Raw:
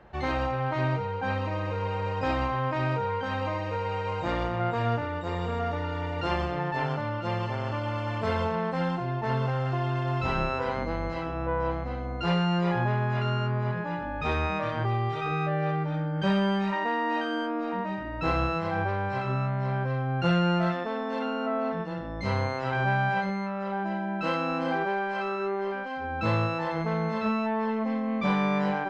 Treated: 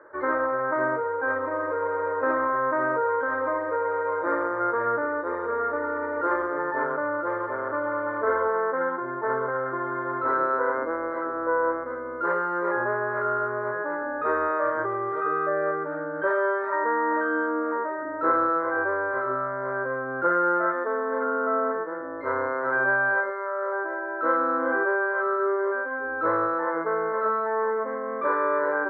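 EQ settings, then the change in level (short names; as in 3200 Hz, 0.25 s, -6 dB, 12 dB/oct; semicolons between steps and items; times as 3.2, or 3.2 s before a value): speaker cabinet 260–2100 Hz, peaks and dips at 280 Hz +9 dB, 430 Hz +4 dB, 620 Hz +9 dB, 1500 Hz +5 dB; bell 1200 Hz +6.5 dB 2.1 oct; fixed phaser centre 730 Hz, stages 6; 0.0 dB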